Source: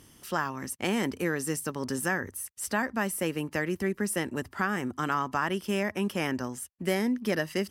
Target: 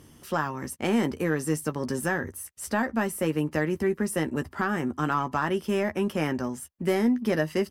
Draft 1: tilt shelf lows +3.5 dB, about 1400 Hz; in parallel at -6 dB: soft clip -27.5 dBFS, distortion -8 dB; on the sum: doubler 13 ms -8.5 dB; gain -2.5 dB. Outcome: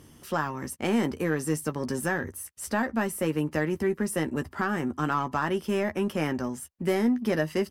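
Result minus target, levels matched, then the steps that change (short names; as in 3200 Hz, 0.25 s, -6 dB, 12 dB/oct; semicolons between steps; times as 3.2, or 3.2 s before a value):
soft clip: distortion +6 dB
change: soft clip -21 dBFS, distortion -14 dB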